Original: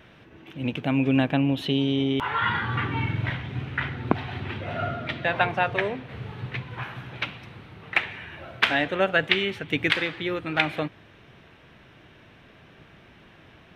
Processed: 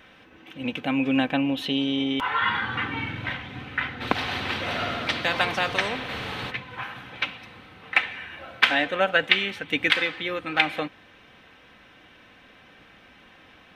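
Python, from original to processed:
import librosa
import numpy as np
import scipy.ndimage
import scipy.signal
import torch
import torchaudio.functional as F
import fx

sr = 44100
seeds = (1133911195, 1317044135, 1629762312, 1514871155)

y = fx.low_shelf(x, sr, hz=450.0, db=-8.0)
y = y + 0.45 * np.pad(y, (int(3.9 * sr / 1000.0), 0))[:len(y)]
y = fx.spectral_comp(y, sr, ratio=2.0, at=(4.0, 6.5), fade=0.02)
y = F.gain(torch.from_numpy(y), 2.0).numpy()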